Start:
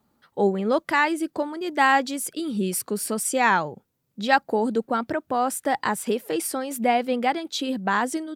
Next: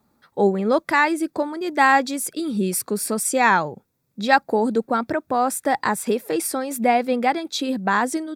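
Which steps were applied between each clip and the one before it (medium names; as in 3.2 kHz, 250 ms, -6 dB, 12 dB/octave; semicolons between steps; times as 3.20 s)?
band-stop 3 kHz, Q 6.3; trim +3 dB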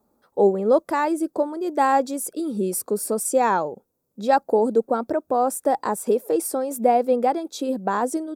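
graphic EQ 125/500/2000/4000 Hz -10/+6/-12/-7 dB; trim -1.5 dB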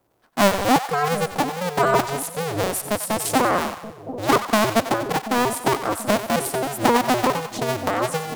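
cycle switcher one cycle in 2, inverted; two-band feedback delay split 680 Hz, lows 733 ms, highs 93 ms, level -11 dB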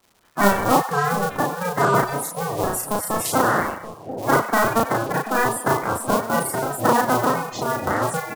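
coarse spectral quantiser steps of 30 dB; doubling 35 ms -2 dB; crackle 340 per s -44 dBFS; trim -1 dB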